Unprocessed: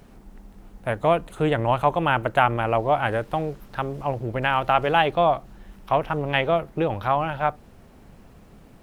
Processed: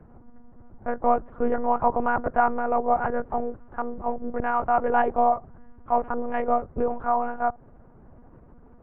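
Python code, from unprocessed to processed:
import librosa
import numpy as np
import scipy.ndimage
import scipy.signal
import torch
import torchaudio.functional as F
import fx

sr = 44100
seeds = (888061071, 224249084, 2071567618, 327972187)

y = scipy.signal.sosfilt(scipy.signal.butter(4, 1400.0, 'lowpass', fs=sr, output='sos'), x)
y = fx.lpc_monotone(y, sr, seeds[0], pitch_hz=240.0, order=10)
y = y * 10.0 ** (-1.0 / 20.0)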